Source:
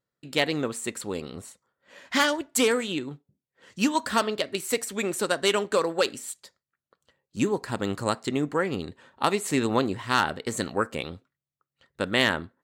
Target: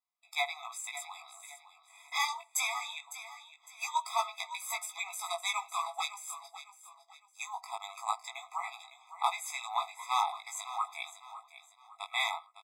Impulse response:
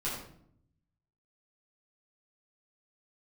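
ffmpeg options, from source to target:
-af "aecho=1:1:556|1112|1668:0.224|0.0761|0.0259,flanger=delay=16.5:depth=4.1:speed=0.22,afftfilt=real='re*eq(mod(floor(b*sr/1024/660),2),1)':imag='im*eq(mod(floor(b*sr/1024/660),2),1)':win_size=1024:overlap=0.75"

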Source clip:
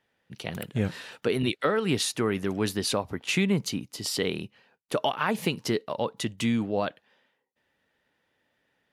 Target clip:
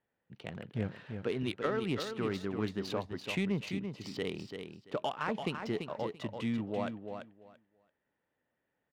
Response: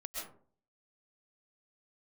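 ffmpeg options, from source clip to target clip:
-filter_complex "[0:a]lowpass=10000,adynamicsmooth=sensitivity=2:basefreq=2100,asplit=2[s0][s1];[s1]aecho=0:1:338|676|1014:0.447|0.0804|0.0145[s2];[s0][s2]amix=inputs=2:normalize=0,volume=0.398"

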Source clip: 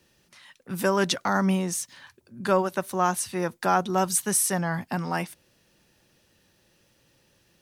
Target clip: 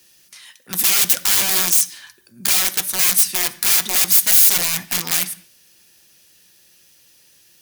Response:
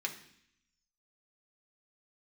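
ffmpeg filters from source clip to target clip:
-filter_complex "[0:a]aeval=exprs='(mod(15*val(0)+1,2)-1)/15':c=same,crystalizer=i=6.5:c=0,asplit=2[s0][s1];[1:a]atrim=start_sample=2205,afade=t=out:st=0.27:d=0.01,atrim=end_sample=12348,asetrate=41013,aresample=44100[s2];[s1][s2]afir=irnorm=-1:irlink=0,volume=0.562[s3];[s0][s3]amix=inputs=2:normalize=0,volume=0.562"

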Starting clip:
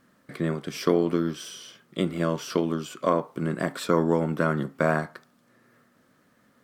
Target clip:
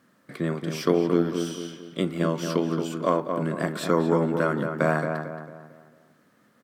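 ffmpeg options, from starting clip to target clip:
-filter_complex "[0:a]highpass=99,asplit=2[s0][s1];[s1]adelay=224,lowpass=f=2000:p=1,volume=0.531,asplit=2[s2][s3];[s3]adelay=224,lowpass=f=2000:p=1,volume=0.43,asplit=2[s4][s5];[s5]adelay=224,lowpass=f=2000:p=1,volume=0.43,asplit=2[s6][s7];[s7]adelay=224,lowpass=f=2000:p=1,volume=0.43,asplit=2[s8][s9];[s9]adelay=224,lowpass=f=2000:p=1,volume=0.43[s10];[s2][s4][s6][s8][s10]amix=inputs=5:normalize=0[s11];[s0][s11]amix=inputs=2:normalize=0"

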